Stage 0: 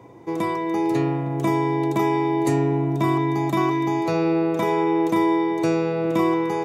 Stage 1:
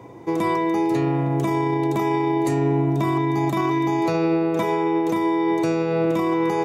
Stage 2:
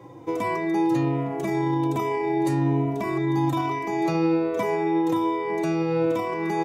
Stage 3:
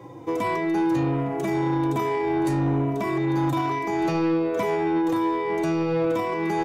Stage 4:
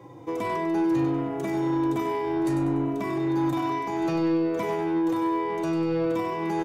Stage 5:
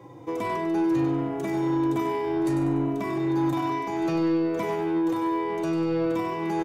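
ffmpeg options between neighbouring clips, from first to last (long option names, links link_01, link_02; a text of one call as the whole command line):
ffmpeg -i in.wav -af "alimiter=limit=-17.5dB:level=0:latency=1:release=39,volume=4dB" out.wav
ffmpeg -i in.wav -filter_complex "[0:a]asplit=2[link_01][link_02];[link_02]adelay=3.2,afreqshift=-1.2[link_03];[link_01][link_03]amix=inputs=2:normalize=1" out.wav
ffmpeg -i in.wav -af "asoftclip=type=tanh:threshold=-20dB,volume=2.5dB" out.wav
ffmpeg -i in.wav -af "aecho=1:1:97|194|291|388:0.398|0.155|0.0606|0.0236,volume=-4dB" out.wav
ffmpeg -i in.wav -af "aecho=1:1:145:0.15" out.wav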